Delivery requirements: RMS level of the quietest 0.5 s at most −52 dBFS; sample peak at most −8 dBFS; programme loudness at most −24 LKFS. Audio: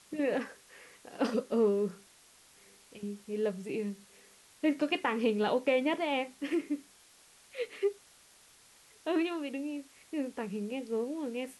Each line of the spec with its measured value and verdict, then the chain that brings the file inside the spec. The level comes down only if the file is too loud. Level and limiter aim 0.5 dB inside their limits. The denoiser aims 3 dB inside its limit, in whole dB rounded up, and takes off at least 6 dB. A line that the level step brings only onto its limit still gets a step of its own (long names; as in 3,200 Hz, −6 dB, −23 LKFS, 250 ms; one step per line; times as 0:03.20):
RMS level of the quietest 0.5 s −61 dBFS: in spec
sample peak −16.5 dBFS: in spec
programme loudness −33.5 LKFS: in spec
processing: no processing needed